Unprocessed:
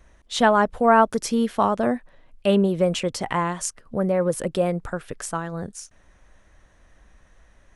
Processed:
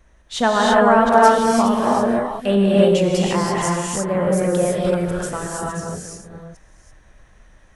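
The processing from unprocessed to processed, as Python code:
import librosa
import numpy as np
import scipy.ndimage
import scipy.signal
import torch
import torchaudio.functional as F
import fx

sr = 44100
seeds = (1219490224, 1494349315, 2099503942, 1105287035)

y = fx.reverse_delay(x, sr, ms=365, wet_db=-8.0)
y = fx.rev_gated(y, sr, seeds[0], gate_ms=360, shape='rising', drr_db=-3.5)
y = y * 10.0 ** (-1.0 / 20.0)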